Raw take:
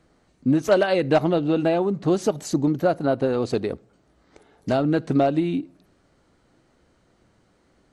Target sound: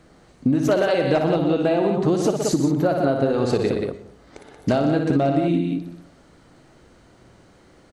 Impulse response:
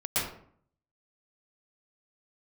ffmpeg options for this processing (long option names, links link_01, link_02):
-filter_complex "[0:a]aecho=1:1:58.31|122.4|180.8:0.447|0.316|0.398,asplit=2[link_01][link_02];[1:a]atrim=start_sample=2205[link_03];[link_02][link_03]afir=irnorm=-1:irlink=0,volume=-26.5dB[link_04];[link_01][link_04]amix=inputs=2:normalize=0,acompressor=threshold=-25dB:ratio=5,volume=8dB"